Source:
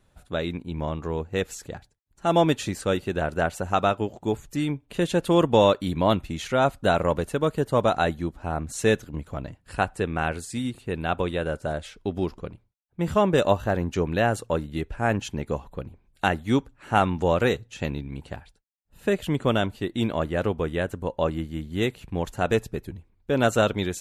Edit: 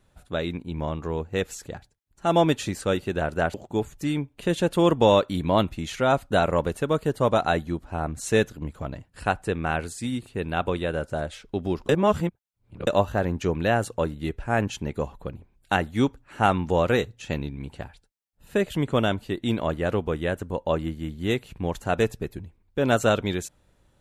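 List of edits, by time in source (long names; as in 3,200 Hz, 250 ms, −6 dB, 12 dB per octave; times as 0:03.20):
0:03.54–0:04.06: remove
0:12.41–0:13.39: reverse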